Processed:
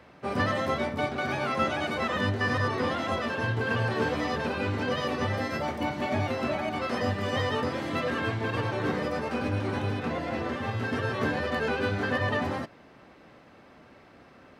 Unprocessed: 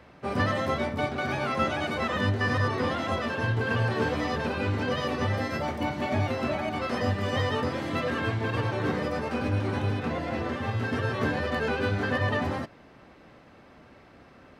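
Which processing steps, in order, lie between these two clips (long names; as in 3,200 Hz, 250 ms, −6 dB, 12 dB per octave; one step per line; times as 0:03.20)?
low-shelf EQ 86 Hz −7.5 dB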